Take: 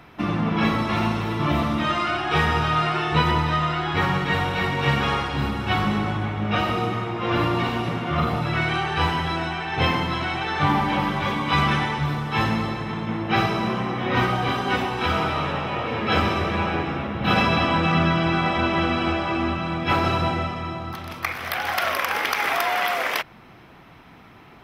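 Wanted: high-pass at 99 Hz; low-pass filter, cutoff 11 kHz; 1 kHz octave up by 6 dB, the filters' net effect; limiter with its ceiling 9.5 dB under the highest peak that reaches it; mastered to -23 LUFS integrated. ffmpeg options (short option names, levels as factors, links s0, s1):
-af "highpass=99,lowpass=11000,equalizer=f=1000:t=o:g=7.5,volume=0.891,alimiter=limit=0.211:level=0:latency=1"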